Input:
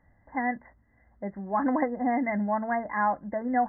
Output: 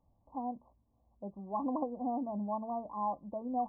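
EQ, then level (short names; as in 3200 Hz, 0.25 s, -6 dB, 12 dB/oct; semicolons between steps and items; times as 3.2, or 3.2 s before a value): brick-wall FIR low-pass 1200 Hz; -8.5 dB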